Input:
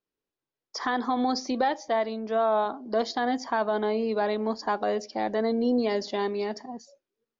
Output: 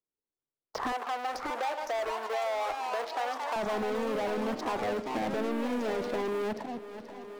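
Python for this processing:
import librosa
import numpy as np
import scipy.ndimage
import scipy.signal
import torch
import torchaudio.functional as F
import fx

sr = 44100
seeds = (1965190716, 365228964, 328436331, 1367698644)

y = fx.wiener(x, sr, points=15)
y = scipy.signal.sosfilt(scipy.signal.butter(2, 4700.0, 'lowpass', fs=sr, output='sos'), y)
y = fx.high_shelf(y, sr, hz=3400.0, db=-7.5)
y = fx.level_steps(y, sr, step_db=18)
y = fx.leveller(y, sr, passes=5)
y = fx.highpass(y, sr, hz=480.0, slope=24, at=(0.92, 3.56))
y = fx.echo_pitch(y, sr, ms=729, semitones=3, count=3, db_per_echo=-6.0)
y = fx.echo_feedback(y, sr, ms=480, feedback_pct=40, wet_db=-20.0)
y = fx.band_squash(y, sr, depth_pct=70)
y = y * librosa.db_to_amplitude(-5.0)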